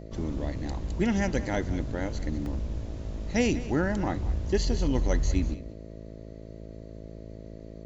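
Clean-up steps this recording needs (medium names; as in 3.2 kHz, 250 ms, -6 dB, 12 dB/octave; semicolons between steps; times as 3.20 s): de-hum 54.4 Hz, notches 12; interpolate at 2.46 s, 1.6 ms; inverse comb 193 ms -16 dB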